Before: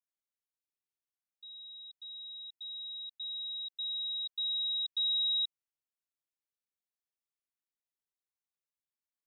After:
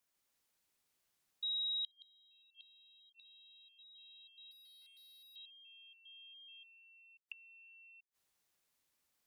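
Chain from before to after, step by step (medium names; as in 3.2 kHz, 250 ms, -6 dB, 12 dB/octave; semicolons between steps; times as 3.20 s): ever faster or slower copies 146 ms, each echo -3 st, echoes 2; 4.51–5.36 s: hard clipper -36.5 dBFS, distortion -9 dB; inverted gate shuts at -41 dBFS, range -35 dB; trim +11 dB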